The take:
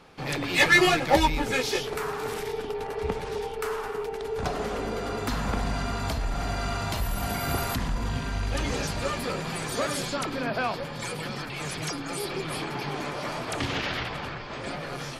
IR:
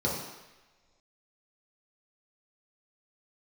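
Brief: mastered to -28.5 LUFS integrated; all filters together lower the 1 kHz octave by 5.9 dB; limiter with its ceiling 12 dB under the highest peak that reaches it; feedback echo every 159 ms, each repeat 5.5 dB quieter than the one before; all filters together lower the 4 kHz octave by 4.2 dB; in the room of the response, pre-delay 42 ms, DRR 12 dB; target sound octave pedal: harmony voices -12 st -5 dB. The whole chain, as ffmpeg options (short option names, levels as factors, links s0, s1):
-filter_complex "[0:a]equalizer=f=1000:t=o:g=-8,equalizer=f=4000:t=o:g=-5,alimiter=limit=0.0944:level=0:latency=1,aecho=1:1:159|318|477|636|795|954|1113:0.531|0.281|0.149|0.079|0.0419|0.0222|0.0118,asplit=2[s0][s1];[1:a]atrim=start_sample=2205,adelay=42[s2];[s1][s2]afir=irnorm=-1:irlink=0,volume=0.0841[s3];[s0][s3]amix=inputs=2:normalize=0,asplit=2[s4][s5];[s5]asetrate=22050,aresample=44100,atempo=2,volume=0.562[s6];[s4][s6]amix=inputs=2:normalize=0,volume=1.12"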